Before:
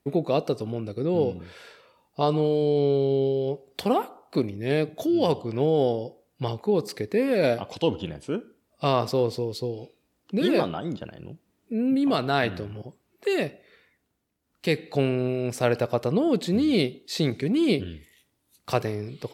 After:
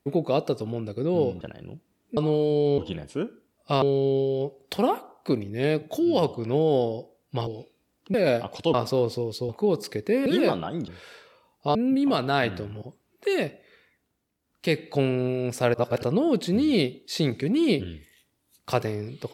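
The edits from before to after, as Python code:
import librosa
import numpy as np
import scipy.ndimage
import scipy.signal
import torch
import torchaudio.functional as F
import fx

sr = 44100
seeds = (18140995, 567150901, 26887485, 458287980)

y = fx.edit(x, sr, fx.swap(start_s=1.41, length_s=0.87, other_s=10.99, other_length_s=0.76),
    fx.swap(start_s=6.54, length_s=0.77, other_s=9.7, other_length_s=0.67),
    fx.move(start_s=7.91, length_s=1.04, to_s=2.89),
    fx.reverse_span(start_s=15.74, length_s=0.29), tone=tone)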